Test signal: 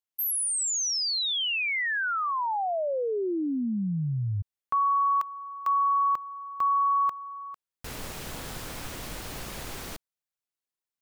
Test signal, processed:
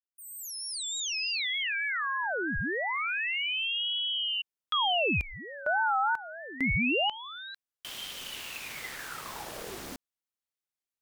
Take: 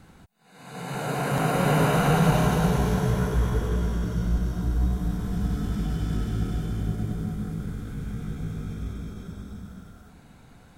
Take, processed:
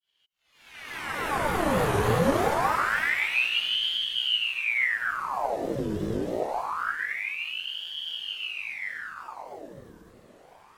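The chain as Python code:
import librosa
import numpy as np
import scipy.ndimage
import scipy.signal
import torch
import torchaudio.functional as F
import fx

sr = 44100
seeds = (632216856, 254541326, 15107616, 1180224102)

y = fx.fade_in_head(x, sr, length_s=1.32)
y = fx.wow_flutter(y, sr, seeds[0], rate_hz=3.2, depth_cents=130.0)
y = fx.ring_lfo(y, sr, carrier_hz=1700.0, swing_pct=85, hz=0.25)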